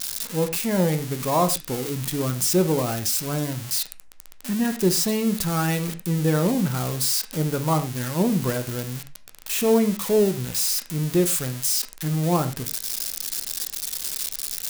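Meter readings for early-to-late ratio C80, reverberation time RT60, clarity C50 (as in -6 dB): 17.5 dB, not exponential, 13.0 dB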